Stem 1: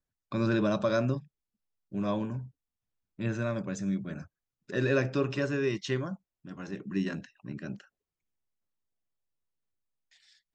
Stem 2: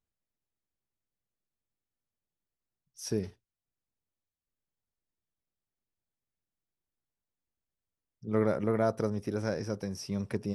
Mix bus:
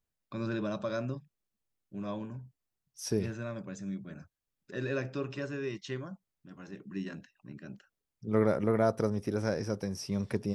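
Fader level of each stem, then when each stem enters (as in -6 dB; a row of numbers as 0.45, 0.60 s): -7.0, +1.0 dB; 0.00, 0.00 s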